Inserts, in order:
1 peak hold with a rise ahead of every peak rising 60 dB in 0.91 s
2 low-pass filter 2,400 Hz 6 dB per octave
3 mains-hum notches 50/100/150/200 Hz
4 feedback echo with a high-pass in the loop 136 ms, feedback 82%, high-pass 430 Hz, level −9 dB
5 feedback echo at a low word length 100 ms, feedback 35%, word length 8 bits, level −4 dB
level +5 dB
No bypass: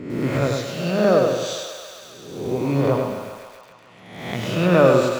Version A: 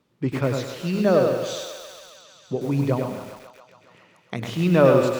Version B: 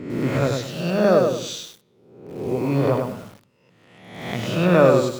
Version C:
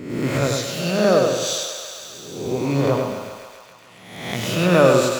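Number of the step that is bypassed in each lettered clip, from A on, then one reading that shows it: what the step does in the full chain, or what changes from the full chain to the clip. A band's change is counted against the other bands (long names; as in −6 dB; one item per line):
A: 1, 125 Hz band +2.5 dB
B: 4, change in momentary loudness spread −2 LU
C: 2, 8 kHz band +8.0 dB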